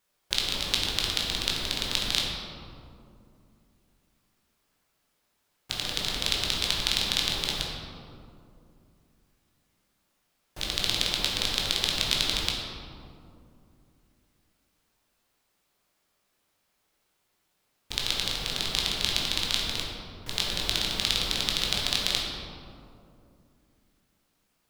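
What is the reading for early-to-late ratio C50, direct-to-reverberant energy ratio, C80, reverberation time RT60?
1.0 dB, -3.0 dB, 2.0 dB, 2.6 s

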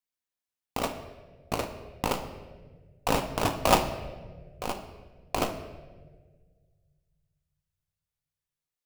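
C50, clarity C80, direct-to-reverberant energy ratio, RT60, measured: 9.5 dB, 11.0 dB, 6.0 dB, 1.5 s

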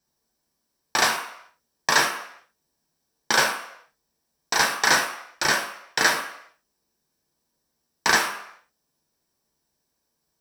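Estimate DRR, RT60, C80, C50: 1.5 dB, no single decay rate, 11.0 dB, 8.5 dB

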